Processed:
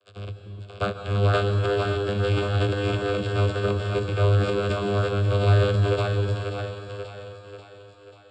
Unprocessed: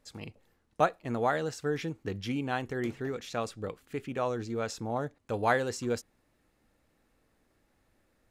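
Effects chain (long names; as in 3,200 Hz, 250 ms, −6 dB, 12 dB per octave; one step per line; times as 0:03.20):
spectral envelope flattened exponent 0.3
in parallel at +1.5 dB: speech leveller 0.5 s
on the sum: hard clipping −19 dBFS, distortion −10 dB
channel vocoder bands 16, saw 101 Hz
phaser with its sweep stopped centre 1,300 Hz, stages 8
echo with a time of its own for lows and highs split 370 Hz, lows 300 ms, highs 538 ms, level −4 dB
transient designer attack 0 dB, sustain +7 dB
on a send at −6.5 dB: convolution reverb RT60 2.7 s, pre-delay 123 ms
on the sum: level +8 dB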